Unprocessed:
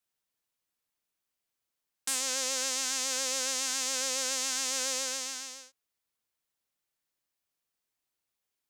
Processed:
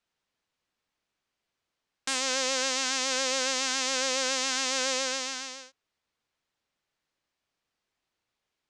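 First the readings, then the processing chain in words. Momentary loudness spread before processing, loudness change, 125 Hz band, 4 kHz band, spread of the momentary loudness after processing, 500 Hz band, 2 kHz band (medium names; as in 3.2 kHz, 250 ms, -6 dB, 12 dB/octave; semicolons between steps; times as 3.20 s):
8 LU, +2.5 dB, no reading, +4.0 dB, 8 LU, +7.5 dB, +7.0 dB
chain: distance through air 110 m; trim +8 dB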